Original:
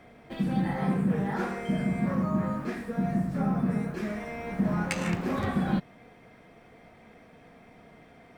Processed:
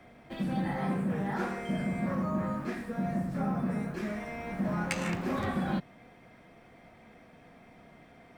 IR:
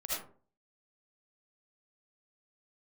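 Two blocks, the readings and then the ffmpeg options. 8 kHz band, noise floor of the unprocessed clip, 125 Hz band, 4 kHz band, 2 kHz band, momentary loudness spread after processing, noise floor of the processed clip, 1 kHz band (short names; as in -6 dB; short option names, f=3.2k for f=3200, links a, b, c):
-1.5 dB, -55 dBFS, -4.5 dB, -1.5 dB, -1.5 dB, 5 LU, -56 dBFS, -1.5 dB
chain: -filter_complex "[0:a]bandreject=f=450:w=12,acrossover=split=260|1400[a][b][c];[a]asoftclip=type=tanh:threshold=-29.5dB[d];[d][b][c]amix=inputs=3:normalize=0,volume=-1.5dB"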